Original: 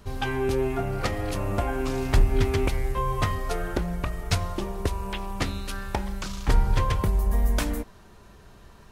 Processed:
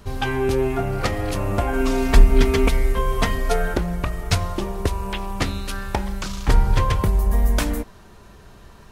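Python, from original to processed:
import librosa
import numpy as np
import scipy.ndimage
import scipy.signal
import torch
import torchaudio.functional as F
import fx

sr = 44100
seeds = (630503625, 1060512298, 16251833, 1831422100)

y = fx.comb(x, sr, ms=4.4, depth=0.83, at=(1.73, 3.74))
y = y * 10.0 ** (4.5 / 20.0)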